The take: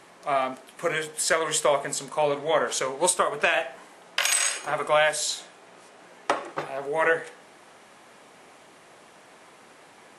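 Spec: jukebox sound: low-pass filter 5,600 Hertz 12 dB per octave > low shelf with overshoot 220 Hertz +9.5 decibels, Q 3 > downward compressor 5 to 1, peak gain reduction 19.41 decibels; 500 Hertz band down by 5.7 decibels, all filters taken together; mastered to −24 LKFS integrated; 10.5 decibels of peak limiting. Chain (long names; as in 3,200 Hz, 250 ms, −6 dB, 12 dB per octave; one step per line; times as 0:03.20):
parametric band 500 Hz −5 dB
brickwall limiter −17.5 dBFS
low-pass filter 5,600 Hz 12 dB per octave
low shelf with overshoot 220 Hz +9.5 dB, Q 3
downward compressor 5 to 1, threshold −45 dBFS
level +23.5 dB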